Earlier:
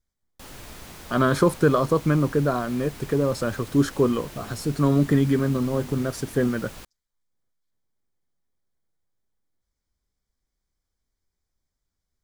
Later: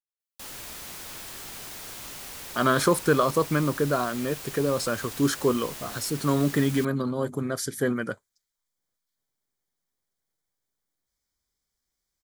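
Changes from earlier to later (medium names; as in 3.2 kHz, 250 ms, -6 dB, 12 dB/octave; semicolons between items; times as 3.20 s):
speech: entry +1.45 s; master: add tilt EQ +2 dB/octave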